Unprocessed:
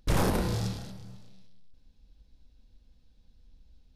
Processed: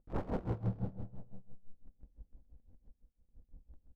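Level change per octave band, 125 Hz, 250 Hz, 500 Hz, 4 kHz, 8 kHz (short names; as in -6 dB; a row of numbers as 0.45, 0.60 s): -7.0 dB, -8.5 dB, -9.0 dB, under -25 dB, under -35 dB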